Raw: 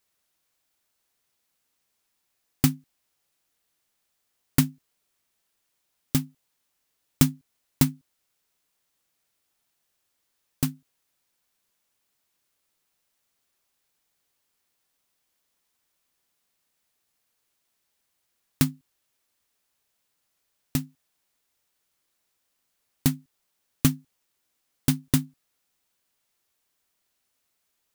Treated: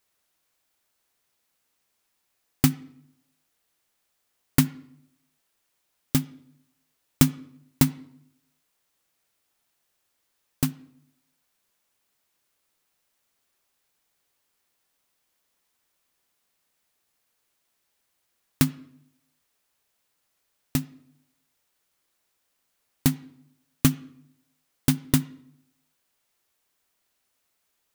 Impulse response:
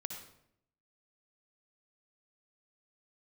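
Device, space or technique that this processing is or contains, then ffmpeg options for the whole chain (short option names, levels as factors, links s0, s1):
filtered reverb send: -filter_complex "[0:a]asplit=2[s0][s1];[s1]highpass=230,lowpass=3300[s2];[1:a]atrim=start_sample=2205[s3];[s2][s3]afir=irnorm=-1:irlink=0,volume=0.282[s4];[s0][s4]amix=inputs=2:normalize=0,volume=1.12"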